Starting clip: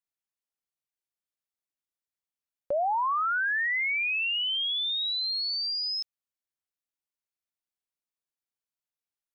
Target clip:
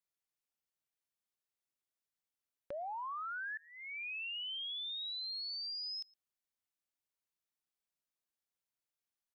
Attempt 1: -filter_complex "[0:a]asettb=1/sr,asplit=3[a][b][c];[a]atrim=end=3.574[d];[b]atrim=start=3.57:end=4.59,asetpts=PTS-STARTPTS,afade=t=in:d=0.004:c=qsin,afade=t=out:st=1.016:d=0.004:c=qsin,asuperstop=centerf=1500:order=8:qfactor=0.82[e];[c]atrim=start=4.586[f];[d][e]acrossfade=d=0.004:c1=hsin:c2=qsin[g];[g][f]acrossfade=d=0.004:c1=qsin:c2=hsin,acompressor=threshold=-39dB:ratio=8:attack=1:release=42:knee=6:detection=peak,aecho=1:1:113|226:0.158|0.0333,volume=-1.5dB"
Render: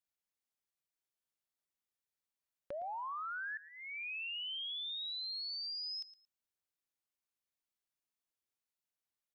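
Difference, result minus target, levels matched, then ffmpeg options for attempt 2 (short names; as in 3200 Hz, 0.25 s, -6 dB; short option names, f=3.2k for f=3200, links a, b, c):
echo-to-direct +10.5 dB
-filter_complex "[0:a]asettb=1/sr,asplit=3[a][b][c];[a]atrim=end=3.574[d];[b]atrim=start=3.57:end=4.59,asetpts=PTS-STARTPTS,afade=t=in:d=0.004:c=qsin,afade=t=out:st=1.016:d=0.004:c=qsin,asuperstop=centerf=1500:order=8:qfactor=0.82[e];[c]atrim=start=4.586[f];[d][e]acrossfade=d=0.004:c1=hsin:c2=qsin[g];[g][f]acrossfade=d=0.004:c1=qsin:c2=hsin,acompressor=threshold=-39dB:ratio=8:attack=1:release=42:knee=6:detection=peak,aecho=1:1:113:0.0473,volume=-1.5dB"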